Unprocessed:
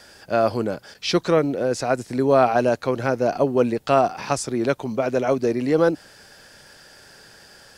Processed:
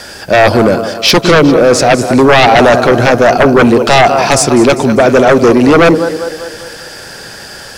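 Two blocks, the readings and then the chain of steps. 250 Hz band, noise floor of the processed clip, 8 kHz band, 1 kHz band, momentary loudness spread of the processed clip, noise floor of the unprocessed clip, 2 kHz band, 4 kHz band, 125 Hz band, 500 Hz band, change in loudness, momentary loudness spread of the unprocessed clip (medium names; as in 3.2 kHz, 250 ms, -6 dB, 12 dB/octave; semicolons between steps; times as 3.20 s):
+15.0 dB, -29 dBFS, +18.5 dB, +14.5 dB, 20 LU, -49 dBFS, +19.5 dB, +19.5 dB, +14.5 dB, +13.0 dB, +14.0 dB, 6 LU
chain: two-band feedback delay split 390 Hz, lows 106 ms, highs 199 ms, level -13 dB; sine folder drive 13 dB, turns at -3.5 dBFS; trim +2 dB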